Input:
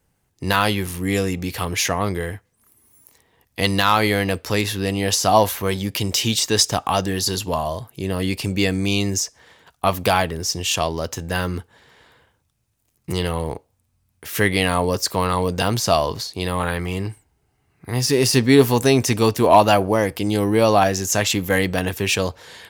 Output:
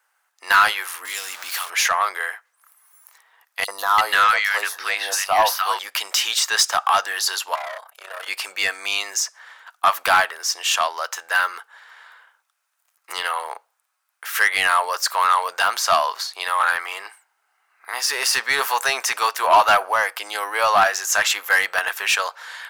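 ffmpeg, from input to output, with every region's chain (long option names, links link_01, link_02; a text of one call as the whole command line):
ffmpeg -i in.wav -filter_complex "[0:a]asettb=1/sr,asplit=3[link_01][link_02][link_03];[link_01]atrim=end=1.054[link_04];[link_02]atrim=start=1.05:end=1.7,asetpts=PTS-STARTPTS,afade=type=in:duration=0.004:curve=qsin,afade=type=out:start_time=0.646:duration=0.004:curve=qsin,aeval=exprs='val(0)+0.5*0.0631*sgn(val(0))':channel_layout=same,acrossover=split=220|3000[link_05][link_06][link_07];[link_06]acompressor=threshold=-37dB:ratio=4:attack=3.2:release=140:knee=2.83:detection=peak[link_08];[link_05][link_08][link_07]amix=inputs=3:normalize=0[link_09];[link_03]atrim=start=1.696[link_10];[link_04][link_09]acrossfade=duration=0.004:curve1=hsin:curve2=qsin[link_11];[link_11][link_10]acrossfade=duration=0.004:curve1=qsin:curve2=hsin,asettb=1/sr,asplit=3[link_12][link_13][link_14];[link_12]atrim=end=3.644[link_15];[link_13]atrim=start=3.64:end=5.79,asetpts=PTS-STARTPTS,afade=type=in:duration=0.004:curve=qsin,afade=type=out:start_time=2.146:duration=0.004:curve=qsin,bandreject=frequency=7300:width=15,acrossover=split=1200|5000[link_16][link_17][link_18];[link_16]adelay=40[link_19];[link_17]adelay=340[link_20];[link_19][link_20][link_18]amix=inputs=3:normalize=0,atrim=end_sample=94815[link_21];[link_14]atrim=start=5.786[link_22];[link_15][link_21]acrossfade=duration=0.004:curve1=hsin:curve2=qsin[link_23];[link_23][link_22]acrossfade=duration=0.004:curve1=qsin:curve2=hsin,asettb=1/sr,asplit=3[link_24][link_25][link_26];[link_24]atrim=end=7.554[link_27];[link_25]atrim=start=7.55:end=8.28,asetpts=PTS-STARTPTS,afade=type=in:duration=0.004:curve=qsin,afade=type=out:start_time=0.726:duration=0.004:curve=qsin,highpass=frequency=580:width_type=q:width=3.2,tremolo=f=32:d=0.824,aeval=exprs='(tanh(28.2*val(0)+0.25)-tanh(0.25))/28.2':channel_layout=same[link_28];[link_26]atrim=start=8.276[link_29];[link_27][link_28]acrossfade=duration=0.004:curve1=hsin:curve2=qsin[link_30];[link_30][link_29]acrossfade=duration=0.004:curve1=qsin:curve2=hsin,highpass=frequency=710:width=0.5412,highpass=frequency=710:width=1.3066,equalizer=frequency=1400:width=1.5:gain=11.5,acontrast=73,volume=-6dB" out.wav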